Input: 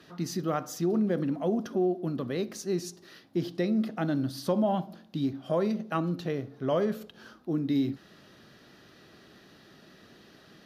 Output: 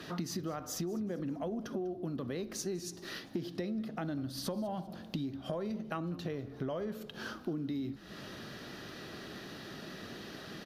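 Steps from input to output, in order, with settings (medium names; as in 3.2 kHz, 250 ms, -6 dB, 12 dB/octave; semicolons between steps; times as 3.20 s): in parallel at +0.5 dB: peak limiter -24.5 dBFS, peak gain reduction 10 dB; on the sum: compression 10:1, threshold -37 dBFS, peak gain reduction 18 dB; frequency-shifting echo 197 ms, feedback 41%, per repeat -69 Hz, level -20.5 dB; trim +2.5 dB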